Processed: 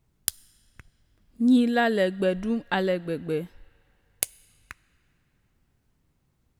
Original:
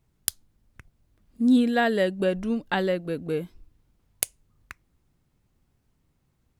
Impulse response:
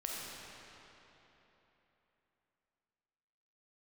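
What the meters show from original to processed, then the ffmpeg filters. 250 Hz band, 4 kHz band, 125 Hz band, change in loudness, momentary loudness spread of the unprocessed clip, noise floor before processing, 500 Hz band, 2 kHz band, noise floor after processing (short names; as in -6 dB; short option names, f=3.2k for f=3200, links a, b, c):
0.0 dB, 0.0 dB, 0.0 dB, 0.0 dB, 11 LU, -71 dBFS, 0.0 dB, 0.0 dB, -71 dBFS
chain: -filter_complex "[0:a]asplit=2[a][b];[b]highpass=1.2k[c];[1:a]atrim=start_sample=2205,adelay=15[d];[c][d]afir=irnorm=-1:irlink=0,volume=-22dB[e];[a][e]amix=inputs=2:normalize=0"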